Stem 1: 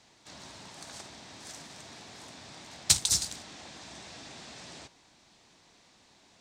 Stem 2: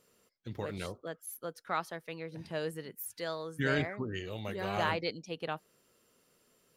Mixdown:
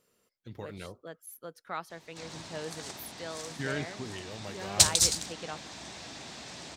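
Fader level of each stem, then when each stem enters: +2.5, -3.5 dB; 1.90, 0.00 s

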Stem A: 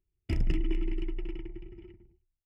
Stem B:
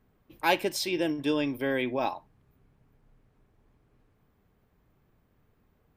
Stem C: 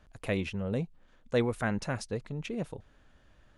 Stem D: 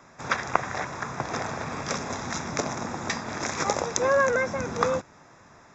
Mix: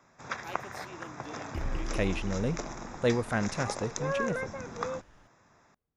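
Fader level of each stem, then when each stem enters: -6.0, -19.5, +1.0, -10.0 dB; 1.25, 0.00, 1.70, 0.00 s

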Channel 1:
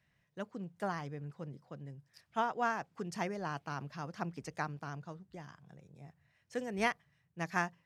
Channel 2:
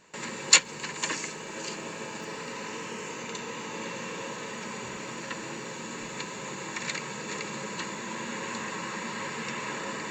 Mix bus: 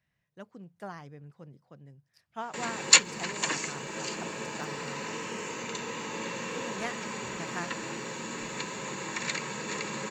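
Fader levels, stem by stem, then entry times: -4.5, +0.5 dB; 0.00, 2.40 s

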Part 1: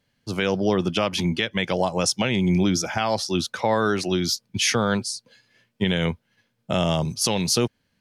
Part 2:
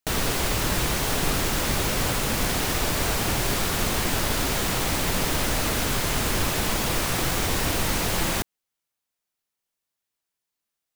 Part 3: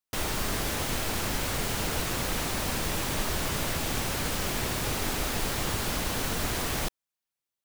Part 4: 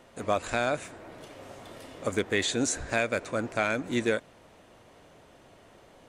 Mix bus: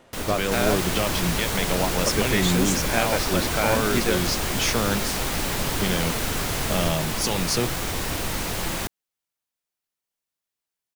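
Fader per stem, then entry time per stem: -3.5, -3.0, -1.0, +1.5 dB; 0.00, 0.45, 0.00, 0.00 s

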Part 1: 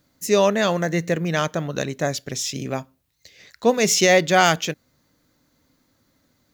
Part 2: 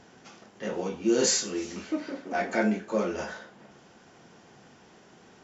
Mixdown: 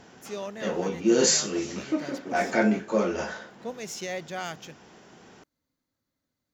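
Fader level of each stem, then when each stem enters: -18.5, +3.0 dB; 0.00, 0.00 s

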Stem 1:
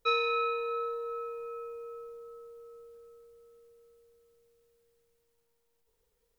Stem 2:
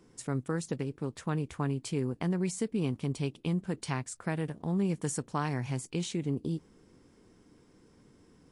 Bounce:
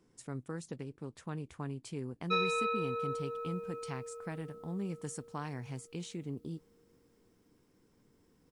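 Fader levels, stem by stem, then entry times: -3.0, -8.5 dB; 2.25, 0.00 s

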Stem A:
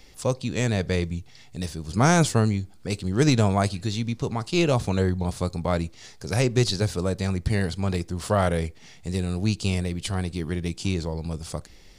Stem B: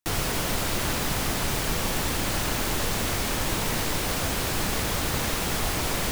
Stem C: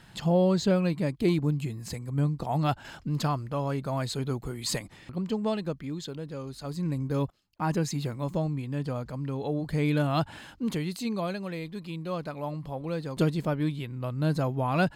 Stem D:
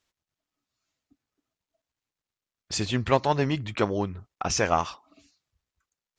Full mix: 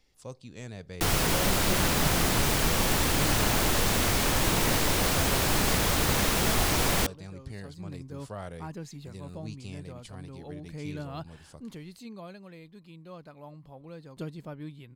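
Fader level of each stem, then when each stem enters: -17.5, +1.5, -12.5, -17.5 dB; 0.00, 0.95, 1.00, 2.20 s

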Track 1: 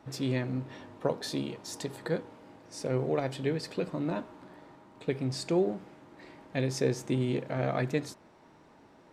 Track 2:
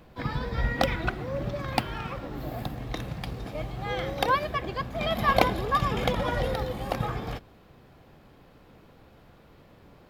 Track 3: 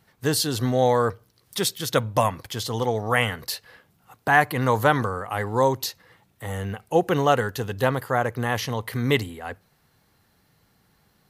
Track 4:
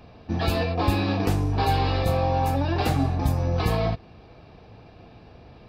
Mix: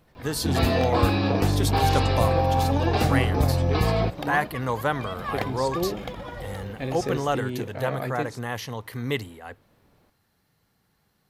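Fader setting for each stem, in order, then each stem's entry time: -1.0, -9.0, -6.0, +1.0 dB; 0.25, 0.00, 0.00, 0.15 s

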